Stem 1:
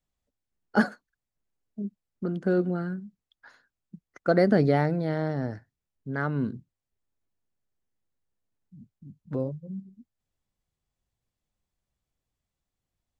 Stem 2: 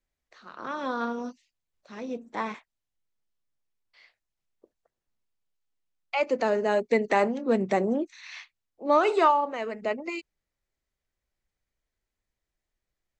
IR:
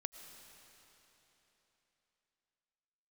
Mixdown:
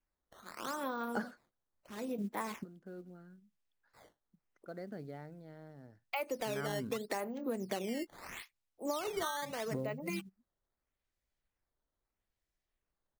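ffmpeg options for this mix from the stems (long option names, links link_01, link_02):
-filter_complex "[0:a]acrusher=bits=8:mode=log:mix=0:aa=0.000001,adelay=400,volume=-3.5dB[link_01];[1:a]acrusher=samples=10:mix=1:aa=0.000001:lfo=1:lforange=16:lforate=0.78,volume=-4dB,asplit=2[link_02][link_03];[link_03]apad=whole_len=599532[link_04];[link_01][link_04]sidechaingate=range=-21dB:threshold=-49dB:ratio=16:detection=peak[link_05];[link_05][link_02]amix=inputs=2:normalize=0,acompressor=threshold=-33dB:ratio=16"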